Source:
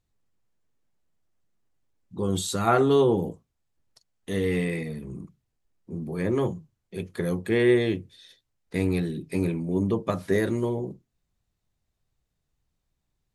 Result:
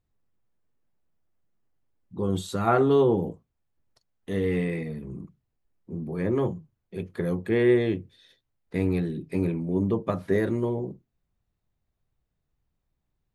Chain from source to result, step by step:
parametric band 8,000 Hz −10.5 dB 2.4 octaves

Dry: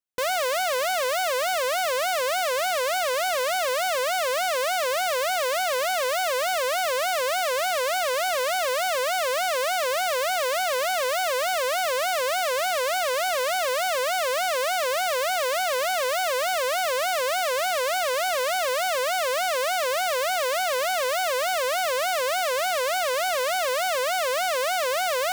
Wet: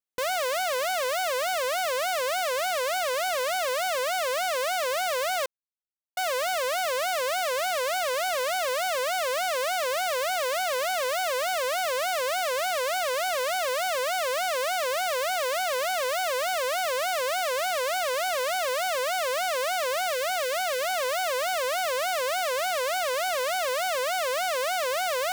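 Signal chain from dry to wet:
0:05.46–0:06.17: silence
0:20.09–0:20.91: notch filter 1,000 Hz, Q 5.4
level −2.5 dB

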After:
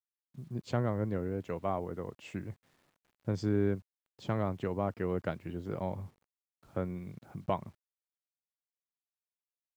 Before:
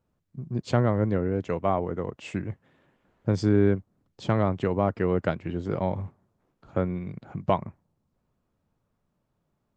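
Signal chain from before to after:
bit-depth reduction 10 bits, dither none
level −8.5 dB

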